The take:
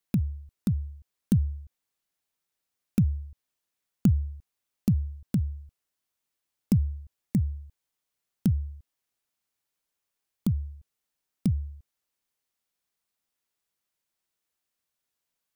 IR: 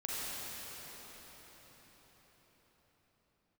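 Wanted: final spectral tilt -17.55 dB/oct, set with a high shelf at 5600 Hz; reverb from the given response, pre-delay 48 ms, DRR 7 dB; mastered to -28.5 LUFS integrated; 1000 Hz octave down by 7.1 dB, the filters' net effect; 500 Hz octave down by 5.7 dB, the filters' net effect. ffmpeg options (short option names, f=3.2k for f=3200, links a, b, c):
-filter_complex "[0:a]equalizer=f=500:t=o:g=-7,equalizer=f=1k:t=o:g=-8,highshelf=f=5.6k:g=7.5,asplit=2[a][b];[1:a]atrim=start_sample=2205,adelay=48[c];[b][c]afir=irnorm=-1:irlink=0,volume=-11.5dB[d];[a][d]amix=inputs=2:normalize=0,volume=3dB"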